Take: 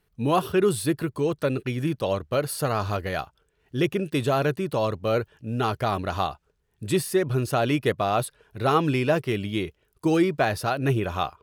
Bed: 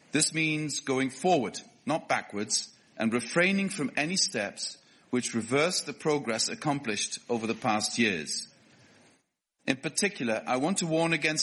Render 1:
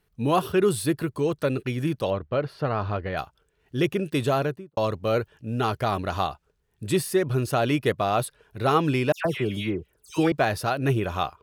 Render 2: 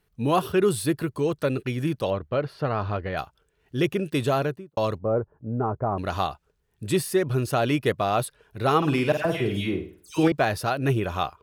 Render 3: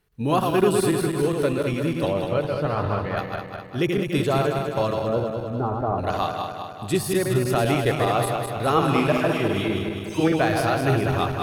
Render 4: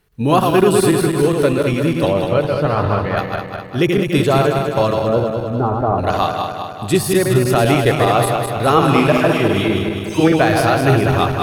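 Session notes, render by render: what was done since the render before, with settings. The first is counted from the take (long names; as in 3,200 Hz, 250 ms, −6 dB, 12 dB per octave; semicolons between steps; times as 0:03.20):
0:02.10–0:03.17: high-frequency loss of the air 290 metres; 0:04.31–0:04.77: fade out and dull; 0:09.12–0:10.32: all-pass dispersion lows, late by 131 ms, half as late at 2,300 Hz
0:04.98–0:05.98: low-pass filter 1,100 Hz 24 dB per octave; 0:08.77–0:10.28: flutter between parallel walls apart 8.7 metres, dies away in 0.43 s
feedback delay that plays each chunk backwards 102 ms, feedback 76%, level −4 dB
level +7.5 dB; brickwall limiter −2 dBFS, peak gain reduction 3 dB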